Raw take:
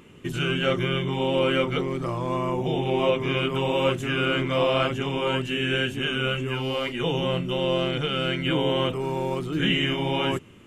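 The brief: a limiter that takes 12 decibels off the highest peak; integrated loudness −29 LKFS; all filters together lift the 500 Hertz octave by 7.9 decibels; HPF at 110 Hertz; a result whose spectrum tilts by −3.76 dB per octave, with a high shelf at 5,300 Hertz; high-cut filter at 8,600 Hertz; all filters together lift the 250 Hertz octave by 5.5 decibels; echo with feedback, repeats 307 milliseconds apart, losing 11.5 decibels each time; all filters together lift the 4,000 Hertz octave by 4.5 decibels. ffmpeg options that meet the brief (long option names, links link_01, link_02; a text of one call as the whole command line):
ffmpeg -i in.wav -af "highpass=110,lowpass=8600,equalizer=frequency=250:width_type=o:gain=4.5,equalizer=frequency=500:width_type=o:gain=8,equalizer=frequency=4000:width_type=o:gain=4,highshelf=frequency=5300:gain=8,alimiter=limit=-15.5dB:level=0:latency=1,aecho=1:1:307|614|921:0.266|0.0718|0.0194,volume=-5dB" out.wav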